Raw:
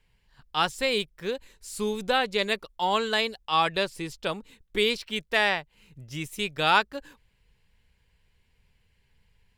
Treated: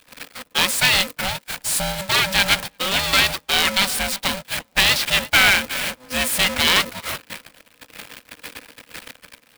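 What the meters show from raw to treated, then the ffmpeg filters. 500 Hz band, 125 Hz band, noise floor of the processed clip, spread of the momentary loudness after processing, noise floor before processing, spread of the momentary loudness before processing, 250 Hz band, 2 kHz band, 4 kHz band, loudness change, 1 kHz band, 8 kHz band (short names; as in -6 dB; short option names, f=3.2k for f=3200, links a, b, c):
-1.0 dB, +8.5 dB, -58 dBFS, 22 LU, -68 dBFS, 13 LU, +3.5 dB, +10.0 dB, +11.5 dB, +8.5 dB, +2.0 dB, +19.5 dB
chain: -filter_complex "[0:a]aeval=exprs='val(0)+0.5*0.0355*sgn(val(0))':c=same,highshelf=f=2.2k:g=8,acrossover=split=250|1600[a][b][c];[b]acompressor=threshold=-36dB:ratio=12[d];[a][d][c]amix=inputs=3:normalize=0,equalizer=f=630:t=o:w=0.33:g=6,equalizer=f=2k:t=o:w=0.33:g=8,equalizer=f=6.3k:t=o:w=0.33:g=-12,equalizer=f=12.5k:t=o:w=0.33:g=-3,acrossover=split=190|3000[e][f][g];[e]acompressor=threshold=-33dB:ratio=6[h];[h][f][g]amix=inputs=3:normalize=0,asplit=2[i][j];[j]adelay=352,lowpass=f=1.3k:p=1,volume=-12dB,asplit=2[k][l];[l]adelay=352,lowpass=f=1.3k:p=1,volume=0.53,asplit=2[m][n];[n]adelay=352,lowpass=f=1.3k:p=1,volume=0.53,asplit=2[o][p];[p]adelay=352,lowpass=f=1.3k:p=1,volume=0.53,asplit=2[q][r];[r]adelay=352,lowpass=f=1.3k:p=1,volume=0.53,asplit=2[s][t];[t]adelay=352,lowpass=f=1.3k:p=1,volume=0.53[u];[i][k][m][o][q][s][u]amix=inputs=7:normalize=0,acrusher=bits=3:mode=log:mix=0:aa=0.000001,highpass=f=77:w=0.5412,highpass=f=77:w=1.3066,apsyclip=10.5dB,agate=range=-25dB:threshold=-19dB:ratio=16:detection=peak,aeval=exprs='val(0)*sgn(sin(2*PI*380*n/s))':c=same,volume=-5.5dB"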